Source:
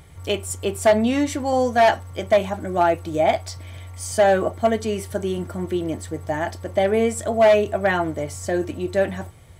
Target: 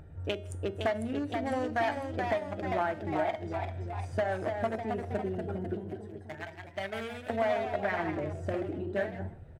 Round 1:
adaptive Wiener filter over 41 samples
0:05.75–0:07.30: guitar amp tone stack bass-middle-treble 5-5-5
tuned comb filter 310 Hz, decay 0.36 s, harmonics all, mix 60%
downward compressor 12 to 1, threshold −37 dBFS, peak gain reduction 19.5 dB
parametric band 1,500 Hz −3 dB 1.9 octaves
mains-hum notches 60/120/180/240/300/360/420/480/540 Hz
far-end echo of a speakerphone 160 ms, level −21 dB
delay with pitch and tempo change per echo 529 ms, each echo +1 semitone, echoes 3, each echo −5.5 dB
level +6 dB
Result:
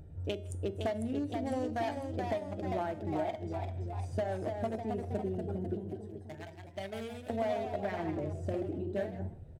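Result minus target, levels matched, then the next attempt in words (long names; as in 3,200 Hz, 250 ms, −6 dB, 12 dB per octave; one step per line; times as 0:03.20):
2,000 Hz band −7.0 dB
adaptive Wiener filter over 41 samples
0:05.75–0:07.30: guitar amp tone stack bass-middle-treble 5-5-5
tuned comb filter 310 Hz, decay 0.36 s, harmonics all, mix 60%
downward compressor 12 to 1, threshold −37 dBFS, peak gain reduction 19.5 dB
parametric band 1,500 Hz +8 dB 1.9 octaves
mains-hum notches 60/120/180/240/300/360/420/480/540 Hz
far-end echo of a speakerphone 160 ms, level −21 dB
delay with pitch and tempo change per echo 529 ms, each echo +1 semitone, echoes 3, each echo −5.5 dB
level +6 dB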